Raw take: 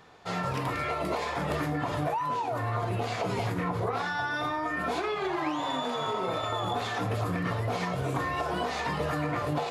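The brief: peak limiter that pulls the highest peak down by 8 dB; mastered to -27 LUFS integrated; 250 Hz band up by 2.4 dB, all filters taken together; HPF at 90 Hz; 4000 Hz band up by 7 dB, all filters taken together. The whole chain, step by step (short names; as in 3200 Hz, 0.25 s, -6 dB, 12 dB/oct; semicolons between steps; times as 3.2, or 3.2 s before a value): HPF 90 Hz; bell 250 Hz +3.5 dB; bell 4000 Hz +8.5 dB; gain +5 dB; limiter -18.5 dBFS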